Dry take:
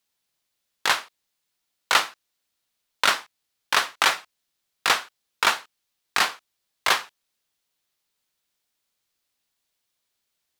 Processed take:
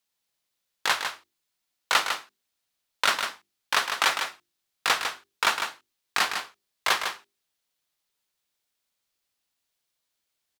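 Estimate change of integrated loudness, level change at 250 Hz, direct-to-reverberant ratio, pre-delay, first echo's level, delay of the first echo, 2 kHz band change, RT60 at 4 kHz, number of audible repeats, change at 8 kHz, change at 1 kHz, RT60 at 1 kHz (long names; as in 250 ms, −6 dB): −3.0 dB, −3.0 dB, no reverb audible, no reverb audible, −7.0 dB, 152 ms, −2.0 dB, no reverb audible, 1, −2.0 dB, −2.0 dB, no reverb audible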